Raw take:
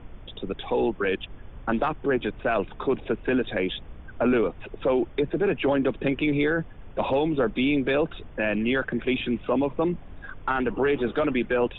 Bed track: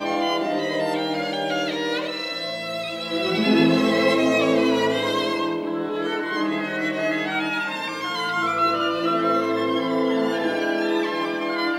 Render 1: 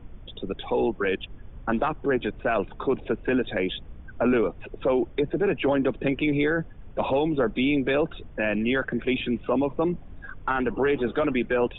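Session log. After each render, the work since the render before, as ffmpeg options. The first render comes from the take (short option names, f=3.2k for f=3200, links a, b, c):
-af "afftdn=nr=6:nf=-44"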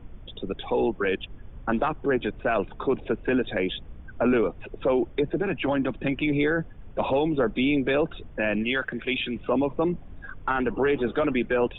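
-filter_complex "[0:a]asettb=1/sr,asplit=3[a][b][c];[a]atrim=end=5.424[d];[b]atrim=start=5.42:end=6.3,asetpts=PTS-STARTPTS,afade=t=in:d=0.004:c=qsin,afade=t=out:st=0.876:d=0.004:c=qsin,equalizer=f=440:t=o:w=0.39:g=-10[e];[c]atrim=start=6.296[f];[d][e]acrossfade=d=0.004:c1=hsin:c2=qsin[g];[g][f]acrossfade=d=0.004:c1=qsin:c2=hsin,asettb=1/sr,asplit=3[h][i][j];[h]atrim=end=8.634[k];[i]atrim=start=8.63:end=9.36,asetpts=PTS-STARTPTS,afade=t=in:d=0.004:c=qsin,afade=t=out:st=0.726:d=0.004:c=qsin,tiltshelf=f=1.4k:g=-5.5[l];[j]atrim=start=9.356[m];[k][l]acrossfade=d=0.004:c1=hsin:c2=qsin[n];[n][m]acrossfade=d=0.004:c1=qsin:c2=hsin"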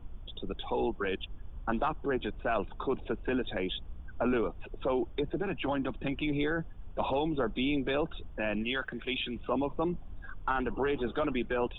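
-af "equalizer=f=125:t=o:w=1:g=-6,equalizer=f=250:t=o:w=1:g=-5,equalizer=f=500:t=o:w=1:g=-7,equalizer=f=2k:t=o:w=1:g=-10"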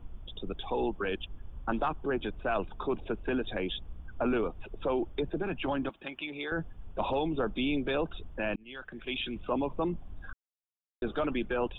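-filter_complex "[0:a]asettb=1/sr,asplit=3[a][b][c];[a]atrim=end=5.894[d];[b]atrim=start=5.89:end=6.52,asetpts=PTS-STARTPTS,afade=t=in:d=0.004:c=qsin,afade=t=out:st=0.626:d=0.004:c=qsin,highpass=f=950:p=1[e];[c]atrim=start=6.516[f];[d][e]acrossfade=d=0.004:c1=hsin:c2=qsin[g];[g][f]acrossfade=d=0.004:c1=qsin:c2=hsin,asplit=4[h][i][j][k];[h]atrim=end=8.56,asetpts=PTS-STARTPTS,afade=t=out:st=8.556:d=0.004:c=hsin[l];[i]atrim=start=8.56:end=10.33,asetpts=PTS-STARTPTS,afade=t=in:d=0.68,afade=t=out:st=1.766:d=0.004:c=hsin[m];[j]atrim=start=10.33:end=11.02,asetpts=PTS-STARTPTS,volume=0[n];[k]atrim=start=11.02,asetpts=PTS-STARTPTS,afade=t=in:d=0.004:c=hsin[o];[l][m][n][o]concat=n=4:v=0:a=1"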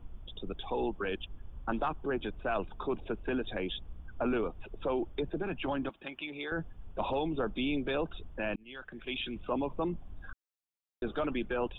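-af "volume=-2dB"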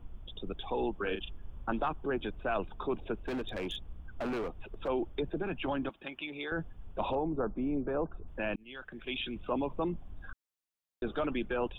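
-filter_complex "[0:a]asettb=1/sr,asplit=3[a][b][c];[a]atrim=end=1.034[d];[b]atrim=start=1.03:end=1.69,asetpts=PTS-STARTPTS,afade=t=in:d=0.004:c=qsin,afade=t=out:st=0.656:d=0.004:c=qsin,asplit=2[e][f];[f]adelay=39,volume=-6dB[g];[e][g]amix=inputs=2:normalize=0,atrim=end_sample=29106[h];[c]atrim=start=1.686[i];[d][h]acrossfade=d=0.004:c1=hsin:c2=qsin[j];[j][i]acrossfade=d=0.004:c1=qsin:c2=hsin,asettb=1/sr,asplit=3[k][l][m];[k]atrim=end=3.144[n];[l]atrim=start=3.14:end=4.88,asetpts=PTS-STARTPTS,afade=t=in:d=0.004:c=qsin,afade=t=out:st=1.736:d=0.004:c=qsin,volume=32dB,asoftclip=hard,volume=-32dB[o];[m]atrim=start=4.876[p];[n][o]acrossfade=d=0.004:c1=hsin:c2=qsin[q];[q][p]acrossfade=d=0.004:c1=qsin:c2=hsin,asettb=1/sr,asplit=3[r][s][t];[r]atrim=end=7.154[u];[s]atrim=start=7.15:end=8.28,asetpts=PTS-STARTPTS,afade=t=in:d=0.004:c=qsin,afade=t=out:st=1.126:d=0.004:c=qsin,lowpass=f=1.4k:w=0.5412,lowpass=f=1.4k:w=1.3066[v];[t]atrim=start=8.276[w];[u][v]acrossfade=d=0.004:c1=hsin:c2=qsin[x];[x][w]acrossfade=d=0.004:c1=qsin:c2=hsin"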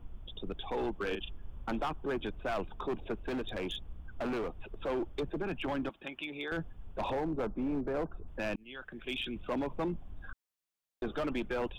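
-af "volume=29dB,asoftclip=hard,volume=-29dB"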